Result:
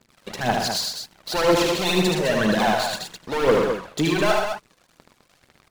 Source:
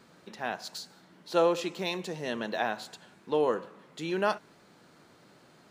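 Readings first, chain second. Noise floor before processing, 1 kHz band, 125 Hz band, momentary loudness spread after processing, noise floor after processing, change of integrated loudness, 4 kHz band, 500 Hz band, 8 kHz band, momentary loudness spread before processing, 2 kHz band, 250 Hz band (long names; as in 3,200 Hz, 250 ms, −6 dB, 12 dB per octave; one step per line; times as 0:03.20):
−59 dBFS, +9.5 dB, +15.5 dB, 10 LU, −63 dBFS, +9.5 dB, +14.0 dB, +8.5 dB, +16.5 dB, 18 LU, +11.5 dB, +12.0 dB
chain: leveller curve on the samples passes 5
phase shifter 2 Hz, delay 2 ms, feedback 62%
loudspeakers that aren't time-aligned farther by 26 metres −4 dB, 41 metres −8 dB, 71 metres −7 dB
level −5.5 dB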